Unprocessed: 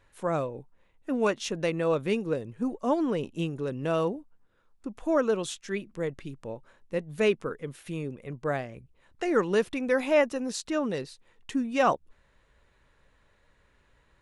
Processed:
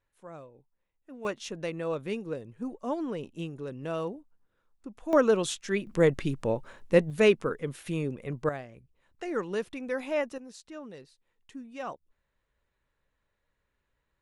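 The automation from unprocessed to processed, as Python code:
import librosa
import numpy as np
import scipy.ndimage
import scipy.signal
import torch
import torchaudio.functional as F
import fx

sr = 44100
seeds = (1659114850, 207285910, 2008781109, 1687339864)

y = fx.gain(x, sr, db=fx.steps((0.0, -17.0), (1.25, -6.0), (5.13, 3.0), (5.87, 9.5), (7.1, 3.0), (8.49, -7.0), (10.38, -14.5)))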